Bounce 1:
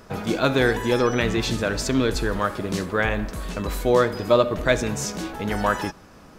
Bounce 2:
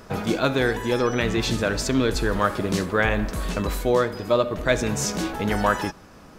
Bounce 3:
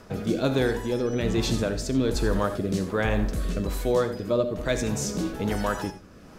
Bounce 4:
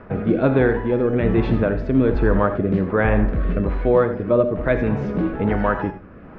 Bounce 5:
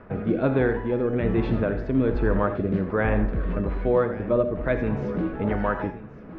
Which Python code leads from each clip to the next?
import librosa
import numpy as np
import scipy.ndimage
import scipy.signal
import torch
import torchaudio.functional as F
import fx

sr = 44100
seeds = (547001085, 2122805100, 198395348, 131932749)

y1 = fx.rider(x, sr, range_db=4, speed_s=0.5)
y2 = fx.dynamic_eq(y1, sr, hz=1900.0, q=0.71, threshold_db=-37.0, ratio=4.0, max_db=-7)
y2 = fx.rotary(y2, sr, hz=1.2)
y2 = fx.rev_gated(y2, sr, seeds[0], gate_ms=110, shape='rising', drr_db=11.0)
y3 = scipy.signal.sosfilt(scipy.signal.butter(4, 2200.0, 'lowpass', fs=sr, output='sos'), y2)
y3 = y3 * 10.0 ** (7.0 / 20.0)
y4 = y3 + 10.0 ** (-16.0 / 20.0) * np.pad(y3, (int(1121 * sr / 1000.0), 0))[:len(y3)]
y4 = y4 * 10.0 ** (-5.0 / 20.0)